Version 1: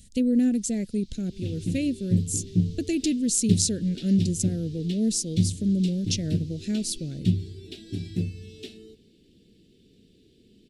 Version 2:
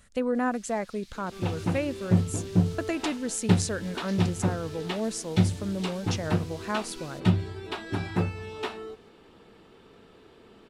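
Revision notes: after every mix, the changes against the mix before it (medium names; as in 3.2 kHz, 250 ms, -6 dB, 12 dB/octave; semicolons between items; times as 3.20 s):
speech -8.5 dB; first sound: remove distance through air 92 m; master: remove Chebyshev band-stop 270–4000 Hz, order 2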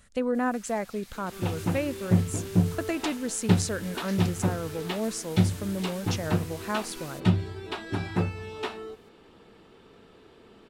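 first sound: remove band-pass filter 4.2 kHz, Q 1.1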